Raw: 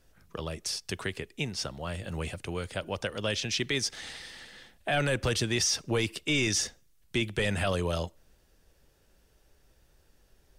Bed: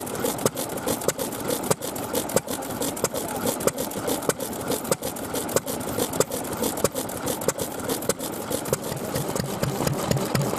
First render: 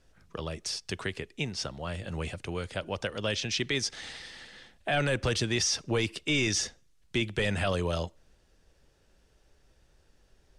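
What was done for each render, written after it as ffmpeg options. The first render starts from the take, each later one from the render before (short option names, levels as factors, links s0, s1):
-af "lowpass=8100"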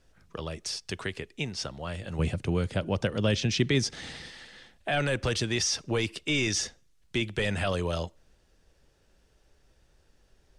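-filter_complex "[0:a]asettb=1/sr,asplit=3[s0][s1][s2];[s0]atrim=end=2.194[s3];[s1]atrim=start=2.19:end=4.3,asetpts=PTS-STARTPTS,afade=t=in:d=0.004:c=qsin,afade=t=out:st=2.106:d=0.004:c=qsin,equalizer=f=150:w=0.43:g=11[s4];[s2]atrim=start=4.296[s5];[s3][s4]acrossfade=d=0.004:c1=hsin:c2=qsin[s6];[s6][s5]acrossfade=d=0.004:c1=qsin:c2=hsin"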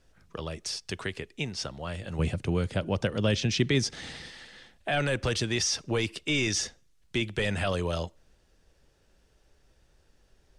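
-af anull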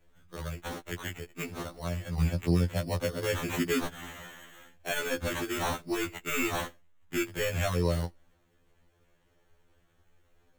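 -af "acrusher=samples=9:mix=1:aa=0.000001,afftfilt=real='re*2*eq(mod(b,4),0)':imag='im*2*eq(mod(b,4),0)':win_size=2048:overlap=0.75"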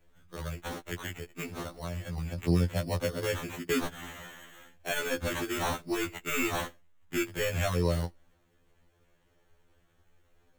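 -filter_complex "[0:a]asettb=1/sr,asplit=3[s0][s1][s2];[s0]atrim=end=0.984[s3];[s1]atrim=start=0.98:end=2.38,asetpts=PTS-STARTPTS,afade=t=in:d=0.004:c=qsin,afade=t=out:st=1.396:d=0.004:c=qsin,acompressor=threshold=0.0282:ratio=6:attack=3.2:release=140:knee=1:detection=peak[s4];[s2]atrim=start=2.376[s5];[s3][s4]acrossfade=d=0.004:c1=hsin:c2=qsin[s6];[s6][s5]acrossfade=d=0.004:c1=qsin:c2=hsin,asplit=2[s7][s8];[s7]atrim=end=3.69,asetpts=PTS-STARTPTS,afade=t=out:st=3.24:d=0.45:silence=0.141254[s9];[s8]atrim=start=3.69,asetpts=PTS-STARTPTS,afade=t=in:d=0.004:c=hsin:silence=0.141254[s10];[s9][s10]concat=n=2:v=0:a=1"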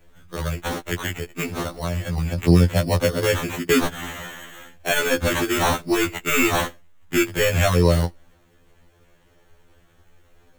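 -af "volume=3.55"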